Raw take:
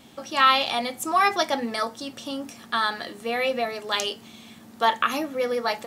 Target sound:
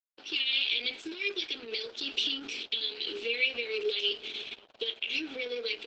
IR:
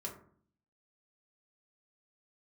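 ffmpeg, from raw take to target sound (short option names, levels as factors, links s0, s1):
-filter_complex "[0:a]agate=range=0.00316:threshold=0.00631:ratio=16:detection=peak,acompressor=threshold=0.0178:ratio=6,asuperstop=centerf=1000:order=20:qfactor=0.55,aeval=exprs='0.0891*(cos(1*acos(clip(val(0)/0.0891,-1,1)))-cos(1*PI/2))+0.00141*(cos(4*acos(clip(val(0)/0.0891,-1,1)))-cos(4*PI/2))':c=same,asplit=3[s0][s1][s2];[s0]afade=t=out:st=0.9:d=0.02[s3];[s1]equalizer=f=940:t=o:w=1.5:g=-3,afade=t=in:st=0.9:d=0.02,afade=t=out:st=3.25:d=0.02[s4];[s2]afade=t=in:st=3.25:d=0.02[s5];[s3][s4][s5]amix=inputs=3:normalize=0,asplit=2[s6][s7];[s7]adelay=535,lowpass=f=910:p=1,volume=0.1,asplit=2[s8][s9];[s9]adelay=535,lowpass=f=910:p=1,volume=0.18[s10];[s6][s8][s10]amix=inputs=3:normalize=0,asoftclip=type=tanh:threshold=0.0422,dynaudnorm=f=260:g=3:m=4.47,alimiter=limit=0.0841:level=0:latency=1:release=81,aeval=exprs='sgn(val(0))*max(abs(val(0))-0.00266,0)':c=same,highpass=f=500:w=0.5412,highpass=f=500:w=1.3066,equalizer=f=1000:t=q:w=4:g=-4,equalizer=f=1500:t=q:w=4:g=8,equalizer=f=2100:t=q:w=4:g=-4,lowpass=f=3700:w=0.5412,lowpass=f=3700:w=1.3066,volume=2.37" -ar 48000 -c:a libopus -b:a 10k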